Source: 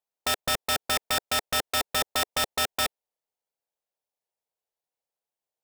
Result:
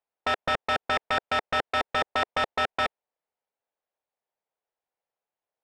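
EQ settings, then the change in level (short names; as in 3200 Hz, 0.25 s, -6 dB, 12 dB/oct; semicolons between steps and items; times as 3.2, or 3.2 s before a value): LPF 2100 Hz 12 dB/oct; low shelf 340 Hz -6.5 dB; +5.0 dB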